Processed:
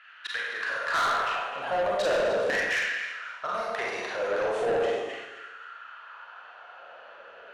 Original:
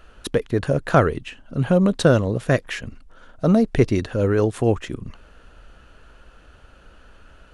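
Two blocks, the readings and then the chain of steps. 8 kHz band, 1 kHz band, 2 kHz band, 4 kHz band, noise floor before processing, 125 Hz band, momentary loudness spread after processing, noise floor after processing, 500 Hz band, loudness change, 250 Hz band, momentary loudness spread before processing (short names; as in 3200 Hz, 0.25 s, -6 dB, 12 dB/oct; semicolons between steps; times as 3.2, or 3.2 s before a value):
-5.0 dB, -0.5 dB, +3.0 dB, 0.0 dB, -51 dBFS, -30.0 dB, 21 LU, -49 dBFS, -6.5 dB, -7.5 dB, -22.5 dB, 14 LU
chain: in parallel at 0 dB: compressor, threshold -29 dBFS, peak gain reduction 18 dB; on the sum: LPF 3600 Hz 6 dB/oct; bell 270 Hz -9.5 dB 2.1 oct; low-pass opened by the level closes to 2800 Hz, open at -17.5 dBFS; on a send: echo with dull and thin repeats by turns 0.132 s, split 930 Hz, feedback 56%, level -6 dB; on the sum: LFO high-pass saw down 0.4 Hz 460–1900 Hz; hard clip -8.5 dBFS, distortion -21 dB; Schroeder reverb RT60 1 s, combs from 32 ms, DRR -3.5 dB; soft clip -17.5 dBFS, distortion -8 dB; gain -4.5 dB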